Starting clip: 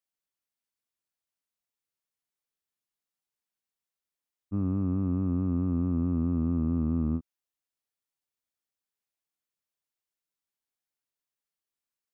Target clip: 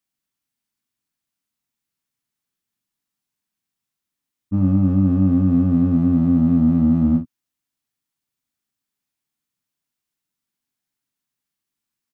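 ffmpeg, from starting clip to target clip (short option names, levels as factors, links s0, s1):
-filter_complex "[0:a]equalizer=f=125:t=o:w=1:g=6,equalizer=f=250:t=o:w=1:g=8,equalizer=f=500:t=o:w=1:g=-7,asplit=2[s0][s1];[s1]asoftclip=type=hard:threshold=0.0562,volume=0.447[s2];[s0][s2]amix=inputs=2:normalize=0,asplit=2[s3][s4];[s4]adelay=42,volume=0.422[s5];[s3][s5]amix=inputs=2:normalize=0,volume=1.41"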